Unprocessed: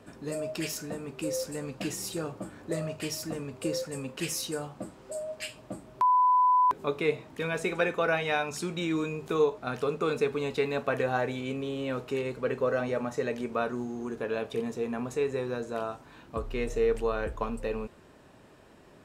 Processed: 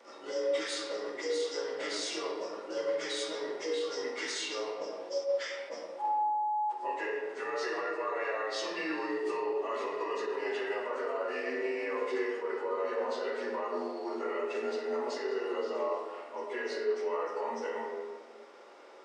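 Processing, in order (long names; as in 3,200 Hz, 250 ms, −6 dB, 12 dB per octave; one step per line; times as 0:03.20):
partials spread apart or drawn together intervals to 88%
high-pass filter 420 Hz 24 dB per octave
downward compressor, threshold −33 dBFS, peak gain reduction 11 dB
brickwall limiter −33 dBFS, peak gain reduction 8 dB
convolution reverb RT60 1.4 s, pre-delay 3 ms, DRR −4 dB
level that may rise only so fast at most 190 dB per second
level +2 dB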